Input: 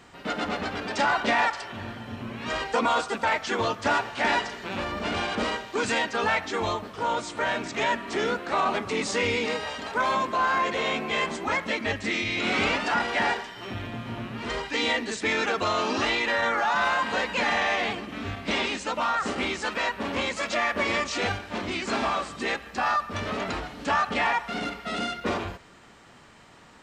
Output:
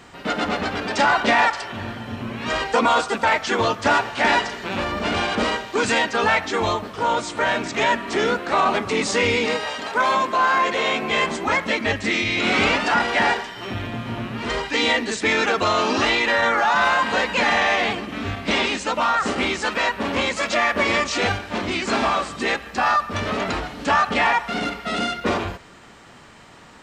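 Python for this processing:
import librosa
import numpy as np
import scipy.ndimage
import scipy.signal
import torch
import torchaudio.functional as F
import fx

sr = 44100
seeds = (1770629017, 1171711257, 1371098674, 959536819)

y = fx.low_shelf(x, sr, hz=140.0, db=-11.0, at=(9.57, 11.03))
y = y * 10.0 ** (6.0 / 20.0)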